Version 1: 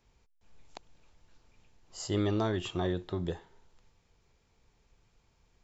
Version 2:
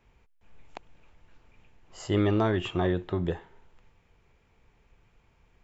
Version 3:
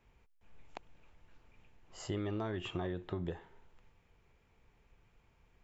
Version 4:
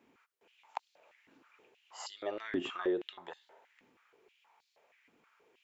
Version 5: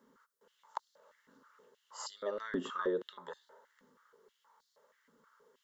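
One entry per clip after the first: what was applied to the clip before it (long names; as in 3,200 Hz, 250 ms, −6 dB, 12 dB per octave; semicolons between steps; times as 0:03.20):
high shelf with overshoot 3,400 Hz −8 dB, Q 1.5; level +5 dB
downward compressor 6 to 1, threshold −30 dBFS, peak gain reduction 9.5 dB; level −4.5 dB
high-pass on a step sequencer 6.3 Hz 270–4,300 Hz; level +1.5 dB
phaser with its sweep stopped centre 490 Hz, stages 8; level +4 dB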